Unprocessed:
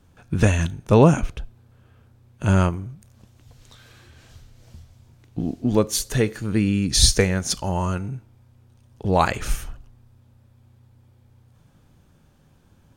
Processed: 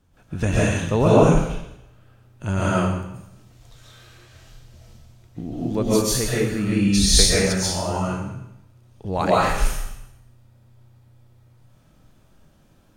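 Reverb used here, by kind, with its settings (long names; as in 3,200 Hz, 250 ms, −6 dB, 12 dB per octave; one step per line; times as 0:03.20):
comb and all-pass reverb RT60 0.82 s, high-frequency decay 1×, pre-delay 95 ms, DRR −8 dB
level −6.5 dB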